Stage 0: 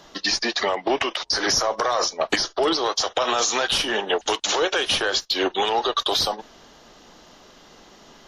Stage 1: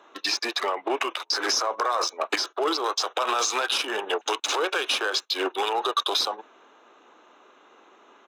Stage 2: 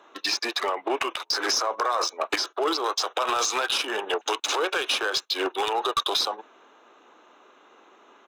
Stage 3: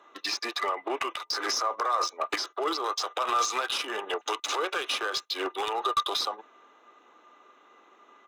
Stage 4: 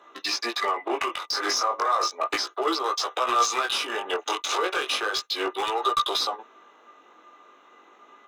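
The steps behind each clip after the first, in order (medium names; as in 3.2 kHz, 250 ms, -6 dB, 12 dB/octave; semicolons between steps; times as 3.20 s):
local Wiener filter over 9 samples; high-pass 340 Hz 24 dB/octave; comb 0.8 ms, depth 39%; trim -2 dB
one-sided wavefolder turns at -16 dBFS
small resonant body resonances 1.2/2 kHz, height 13 dB, ringing for 90 ms; trim -5 dB
chorus 0.34 Hz, delay 15 ms, depth 7.4 ms; trim +6.5 dB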